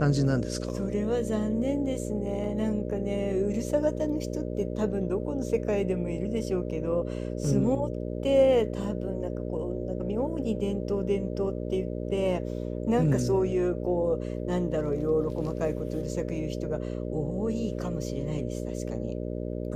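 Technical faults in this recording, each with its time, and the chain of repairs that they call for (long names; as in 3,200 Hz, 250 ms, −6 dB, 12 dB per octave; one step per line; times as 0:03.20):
mains buzz 60 Hz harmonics 10 −33 dBFS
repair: hum removal 60 Hz, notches 10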